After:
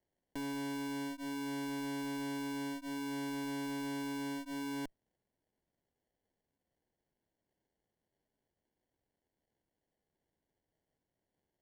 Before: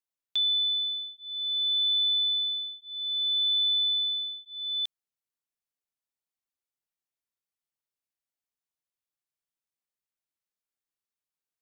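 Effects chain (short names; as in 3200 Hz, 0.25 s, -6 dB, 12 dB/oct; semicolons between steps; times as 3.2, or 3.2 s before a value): sample-and-hold 35×; tube stage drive 47 dB, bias 0.65; gain +8.5 dB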